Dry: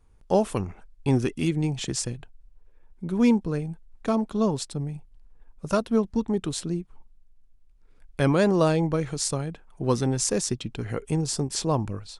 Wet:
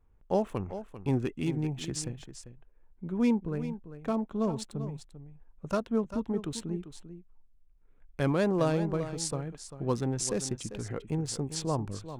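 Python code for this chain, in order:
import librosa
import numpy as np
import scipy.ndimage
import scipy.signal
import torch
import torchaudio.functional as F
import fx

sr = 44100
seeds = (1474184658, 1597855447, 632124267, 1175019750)

y = fx.wiener(x, sr, points=9)
y = y + 10.0 ** (-12.0 / 20.0) * np.pad(y, (int(394 * sr / 1000.0), 0))[:len(y)]
y = y * 10.0 ** (-6.0 / 20.0)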